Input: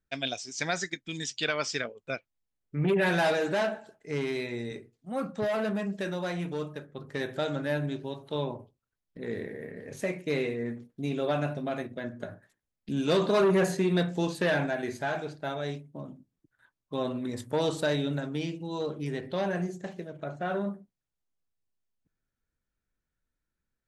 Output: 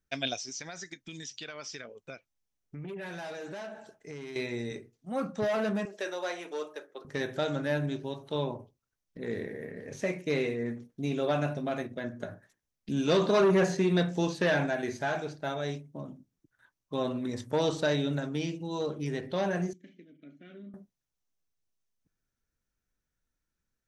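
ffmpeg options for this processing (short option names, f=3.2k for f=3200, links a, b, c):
-filter_complex "[0:a]asettb=1/sr,asplit=3[a][b][c];[a]atrim=end=0.574[d];[b]atrim=start=0.57:end=4.36,asetpts=PTS-STARTPTS,afade=t=in:d=0.004:c=qsin,afade=t=out:st=3.786:d=0.004:c=qsin,acompressor=threshold=-40dB:ratio=4:attack=3.2:release=140:knee=1:detection=peak[e];[c]atrim=start=4.356[f];[d][e]acrossfade=d=0.004:c1=hsin:c2=qsin[g];[g][f]acrossfade=d=0.004:c1=qsin:c2=hsin,asettb=1/sr,asplit=3[h][i][j];[h]atrim=end=5.854[k];[i]atrim=start=5.85:end=7.05,asetpts=PTS-STARTPTS,afade=t=in:d=0.004:c=qsin,afade=t=out:st=1.196:d=0.004:c=qsin,highpass=f=370:w=0.5412,highpass=f=370:w=1.3066[l];[j]atrim=start=7.046[m];[k][l]acrossfade=d=0.004:c1=hsin:c2=qsin[n];[n][m]acrossfade=d=0.004:c1=qsin:c2=hsin,asettb=1/sr,asplit=3[o][p][q];[o]atrim=end=19.734[r];[p]atrim=start=19.73:end=20.74,asetpts=PTS-STARTPTS,afade=t=in:d=0.004:c=qsin,afade=t=out:st=1.006:d=0.004:c=qsin,asplit=3[s][t][u];[s]bandpass=f=270:t=q:w=8,volume=0dB[v];[t]bandpass=f=2.29k:t=q:w=8,volume=-6dB[w];[u]bandpass=f=3.01k:t=q:w=8,volume=-9dB[x];[v][w][x]amix=inputs=3:normalize=0[y];[q]atrim=start=20.736[z];[r][y]acrossfade=d=0.004:c1=hsin:c2=qsin[aa];[aa][z]acrossfade=d=0.004:c1=qsin:c2=hsin,acrossover=split=6300[ab][ac];[ac]acompressor=threshold=-60dB:ratio=4:attack=1:release=60[ad];[ab][ad]amix=inputs=2:normalize=0,equalizer=f=5.9k:t=o:w=0.29:g=7.5"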